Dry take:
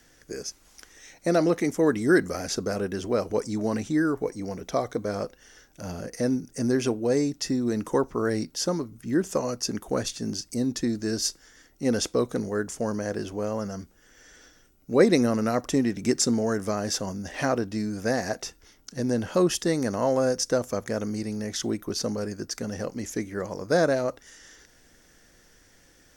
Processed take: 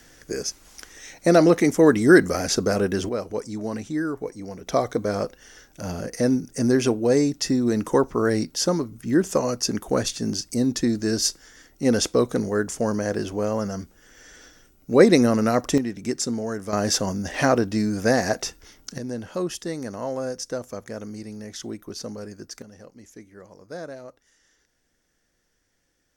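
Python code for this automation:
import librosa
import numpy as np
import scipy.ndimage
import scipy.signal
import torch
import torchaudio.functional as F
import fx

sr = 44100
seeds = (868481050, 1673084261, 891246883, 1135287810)

y = fx.gain(x, sr, db=fx.steps((0.0, 6.5), (3.09, -2.5), (4.67, 4.5), (15.78, -3.0), (16.73, 6.0), (18.98, -5.5), (22.62, -14.0)))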